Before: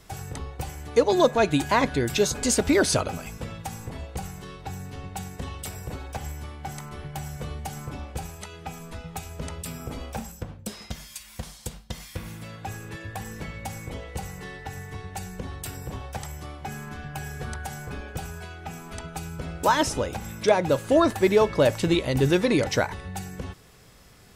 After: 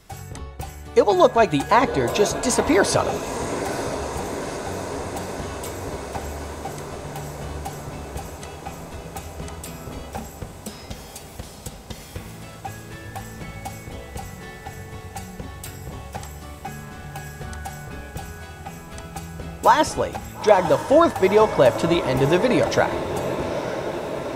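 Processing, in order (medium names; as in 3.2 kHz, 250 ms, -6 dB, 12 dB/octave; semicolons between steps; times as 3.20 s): dynamic bell 860 Hz, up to +7 dB, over -36 dBFS, Q 0.79; on a send: echo that smears into a reverb 938 ms, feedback 75%, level -10.5 dB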